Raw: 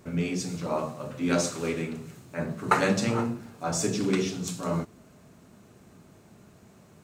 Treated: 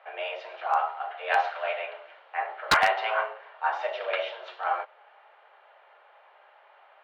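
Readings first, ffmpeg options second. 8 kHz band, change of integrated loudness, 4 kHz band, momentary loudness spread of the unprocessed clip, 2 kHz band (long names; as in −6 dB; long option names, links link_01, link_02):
−13.5 dB, +0.5 dB, +2.5 dB, 11 LU, +6.0 dB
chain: -af "bandreject=frequency=2400:width=14,highpass=frequency=470:width_type=q:width=0.5412,highpass=frequency=470:width_type=q:width=1.307,lowpass=frequency=3000:width_type=q:width=0.5176,lowpass=frequency=3000:width_type=q:width=0.7071,lowpass=frequency=3000:width_type=q:width=1.932,afreqshift=190,aeval=exprs='0.133*(abs(mod(val(0)/0.133+3,4)-2)-1)':channel_layout=same,volume=5.5dB"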